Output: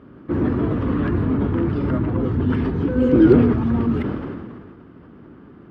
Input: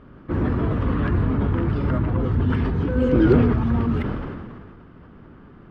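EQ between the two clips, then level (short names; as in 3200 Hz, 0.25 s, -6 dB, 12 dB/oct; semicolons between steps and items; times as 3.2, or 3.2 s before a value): HPF 66 Hz; bell 310 Hz +6.5 dB 1.1 oct; -1.0 dB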